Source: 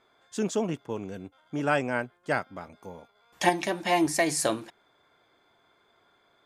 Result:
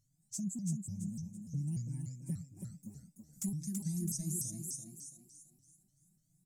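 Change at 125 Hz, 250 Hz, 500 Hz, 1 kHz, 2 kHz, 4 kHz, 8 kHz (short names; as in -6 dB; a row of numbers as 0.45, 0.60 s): +1.5 dB, -8.0 dB, -31.0 dB, under -40 dB, under -40 dB, -20.0 dB, -5.0 dB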